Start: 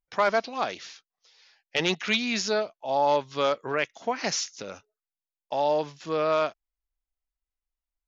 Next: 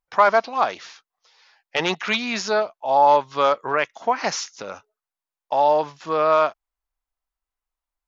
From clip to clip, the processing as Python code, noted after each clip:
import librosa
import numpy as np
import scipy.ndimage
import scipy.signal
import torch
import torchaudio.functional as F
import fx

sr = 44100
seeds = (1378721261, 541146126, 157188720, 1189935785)

y = fx.peak_eq(x, sr, hz=1000.0, db=10.5, octaves=1.6)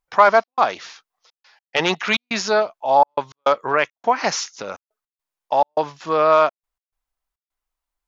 y = fx.step_gate(x, sr, bpm=104, pattern='xxx.xxxxx.x.', floor_db=-60.0, edge_ms=4.5)
y = y * librosa.db_to_amplitude(3.0)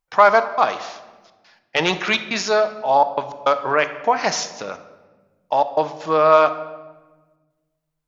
y = fx.room_shoebox(x, sr, seeds[0], volume_m3=970.0, walls='mixed', distance_m=0.54)